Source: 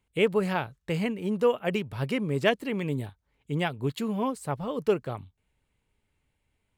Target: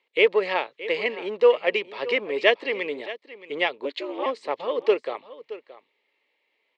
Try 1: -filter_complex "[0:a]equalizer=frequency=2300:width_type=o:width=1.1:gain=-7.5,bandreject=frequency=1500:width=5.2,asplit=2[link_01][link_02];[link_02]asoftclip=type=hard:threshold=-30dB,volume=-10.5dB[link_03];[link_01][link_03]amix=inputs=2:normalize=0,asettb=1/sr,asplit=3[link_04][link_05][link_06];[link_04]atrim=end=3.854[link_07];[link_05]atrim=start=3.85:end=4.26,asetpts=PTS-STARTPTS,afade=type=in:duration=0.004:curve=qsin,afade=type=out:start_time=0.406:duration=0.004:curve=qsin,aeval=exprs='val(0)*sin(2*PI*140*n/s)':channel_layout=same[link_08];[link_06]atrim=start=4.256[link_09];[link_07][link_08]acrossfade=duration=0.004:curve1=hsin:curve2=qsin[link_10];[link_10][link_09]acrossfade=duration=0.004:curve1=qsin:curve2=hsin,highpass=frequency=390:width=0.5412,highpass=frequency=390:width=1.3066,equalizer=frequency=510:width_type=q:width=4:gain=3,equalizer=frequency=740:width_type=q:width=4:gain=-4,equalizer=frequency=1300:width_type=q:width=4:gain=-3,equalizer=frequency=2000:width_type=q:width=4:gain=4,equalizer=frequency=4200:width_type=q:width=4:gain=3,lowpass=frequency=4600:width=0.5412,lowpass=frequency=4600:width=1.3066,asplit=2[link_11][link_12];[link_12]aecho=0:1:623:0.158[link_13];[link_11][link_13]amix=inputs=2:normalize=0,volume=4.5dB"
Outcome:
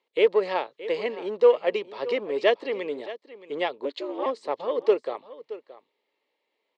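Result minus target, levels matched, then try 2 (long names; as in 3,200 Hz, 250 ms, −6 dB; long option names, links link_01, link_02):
2,000 Hz band −6.5 dB
-filter_complex "[0:a]equalizer=frequency=2300:width_type=o:width=1.1:gain=2.5,bandreject=frequency=1500:width=5.2,asplit=2[link_01][link_02];[link_02]asoftclip=type=hard:threshold=-30dB,volume=-10.5dB[link_03];[link_01][link_03]amix=inputs=2:normalize=0,asettb=1/sr,asplit=3[link_04][link_05][link_06];[link_04]atrim=end=3.854[link_07];[link_05]atrim=start=3.85:end=4.26,asetpts=PTS-STARTPTS,afade=type=in:duration=0.004:curve=qsin,afade=type=out:start_time=0.406:duration=0.004:curve=qsin,aeval=exprs='val(0)*sin(2*PI*140*n/s)':channel_layout=same[link_08];[link_06]atrim=start=4.256[link_09];[link_07][link_08]acrossfade=duration=0.004:curve1=hsin:curve2=qsin[link_10];[link_10][link_09]acrossfade=duration=0.004:curve1=qsin:curve2=hsin,highpass=frequency=390:width=0.5412,highpass=frequency=390:width=1.3066,equalizer=frequency=510:width_type=q:width=4:gain=3,equalizer=frequency=740:width_type=q:width=4:gain=-4,equalizer=frequency=1300:width_type=q:width=4:gain=-3,equalizer=frequency=2000:width_type=q:width=4:gain=4,equalizer=frequency=4200:width_type=q:width=4:gain=3,lowpass=frequency=4600:width=0.5412,lowpass=frequency=4600:width=1.3066,asplit=2[link_11][link_12];[link_12]aecho=0:1:623:0.158[link_13];[link_11][link_13]amix=inputs=2:normalize=0,volume=4.5dB"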